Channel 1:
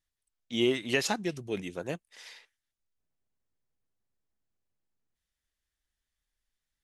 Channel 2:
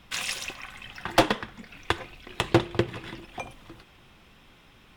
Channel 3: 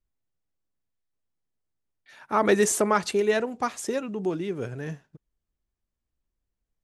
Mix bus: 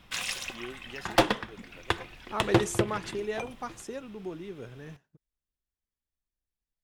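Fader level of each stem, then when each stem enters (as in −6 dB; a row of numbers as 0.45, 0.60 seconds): −16.0, −2.0, −10.5 decibels; 0.00, 0.00, 0.00 seconds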